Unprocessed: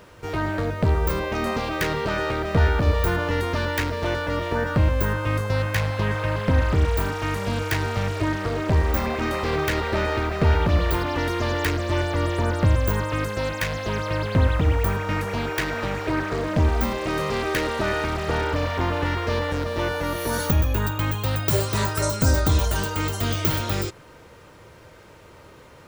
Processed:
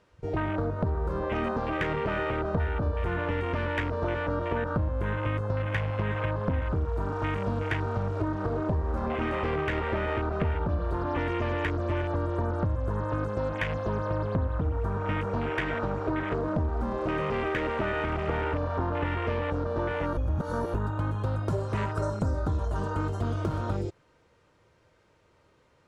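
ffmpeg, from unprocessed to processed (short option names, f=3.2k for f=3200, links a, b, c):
-filter_complex "[0:a]asplit=3[a][b][c];[a]atrim=end=20.172[d];[b]atrim=start=20.168:end=20.742,asetpts=PTS-STARTPTS,areverse[e];[c]atrim=start=20.738[f];[d][e]acrossfade=d=0.004:c1=hsin:c2=hsin[g];[g][f]acrossfade=d=0.004:c1=hsin:c2=hsin,lowpass=8.3k,afwtdn=0.0398,acompressor=threshold=-25dB:ratio=6"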